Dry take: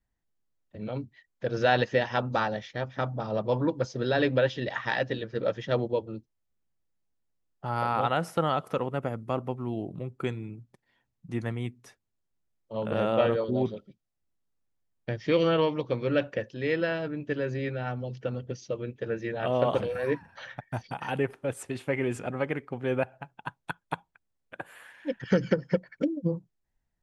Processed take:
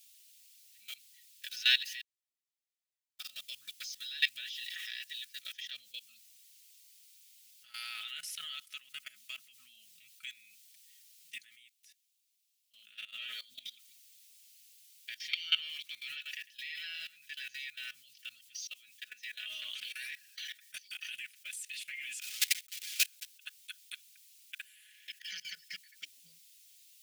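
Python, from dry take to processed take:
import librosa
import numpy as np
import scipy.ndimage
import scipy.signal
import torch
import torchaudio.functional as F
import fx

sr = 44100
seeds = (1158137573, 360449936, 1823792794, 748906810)

y = fx.noise_floor_step(x, sr, seeds[0], at_s=5.53, before_db=-60, after_db=-68, tilt_db=0.0)
y = fx.echo_single(y, sr, ms=103, db=-11.0, at=(15.1, 17.65))
y = fx.block_float(y, sr, bits=3, at=(22.21, 23.34), fade=0.02)
y = fx.edit(y, sr, fx.room_tone_fill(start_s=2.01, length_s=1.18),
    fx.fade_down_up(start_s=11.34, length_s=1.88, db=-9.0, fade_s=0.13, curve='qua'), tone=tone)
y = scipy.signal.sosfilt(scipy.signal.cheby2(4, 50, 1000.0, 'highpass', fs=sr, output='sos'), y)
y = y + 0.62 * np.pad(y, (int(4.7 * sr / 1000.0), 0))[:len(y)]
y = fx.level_steps(y, sr, step_db=18)
y = F.gain(torch.from_numpy(y), 11.5).numpy()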